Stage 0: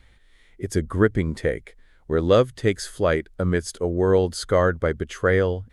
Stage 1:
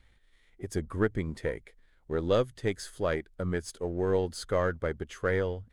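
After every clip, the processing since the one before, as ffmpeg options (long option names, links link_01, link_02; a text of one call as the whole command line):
ffmpeg -i in.wav -af "aeval=exprs='if(lt(val(0),0),0.708*val(0),val(0))':channel_layout=same,volume=-7.5dB" out.wav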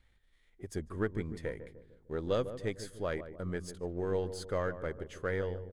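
ffmpeg -i in.wav -filter_complex "[0:a]asplit=2[link_01][link_02];[link_02]adelay=150,lowpass=frequency=810:poles=1,volume=-10dB,asplit=2[link_03][link_04];[link_04]adelay=150,lowpass=frequency=810:poles=1,volume=0.53,asplit=2[link_05][link_06];[link_06]adelay=150,lowpass=frequency=810:poles=1,volume=0.53,asplit=2[link_07][link_08];[link_08]adelay=150,lowpass=frequency=810:poles=1,volume=0.53,asplit=2[link_09][link_10];[link_10]adelay=150,lowpass=frequency=810:poles=1,volume=0.53,asplit=2[link_11][link_12];[link_12]adelay=150,lowpass=frequency=810:poles=1,volume=0.53[link_13];[link_01][link_03][link_05][link_07][link_09][link_11][link_13]amix=inputs=7:normalize=0,volume=-6dB" out.wav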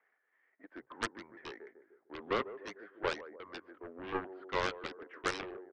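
ffmpeg -i in.wav -af "highpass=frequency=540:width_type=q:width=0.5412,highpass=frequency=540:width_type=q:width=1.307,lowpass=frequency=2200:width_type=q:width=0.5176,lowpass=frequency=2200:width_type=q:width=0.7071,lowpass=frequency=2200:width_type=q:width=1.932,afreqshift=-95,aphaser=in_gain=1:out_gain=1:delay=4.8:decay=0.24:speed=0.9:type=triangular,aeval=exprs='0.0668*(cos(1*acos(clip(val(0)/0.0668,-1,1)))-cos(1*PI/2))+0.0188*(cos(7*acos(clip(val(0)/0.0668,-1,1)))-cos(7*PI/2))':channel_layout=same,volume=3dB" out.wav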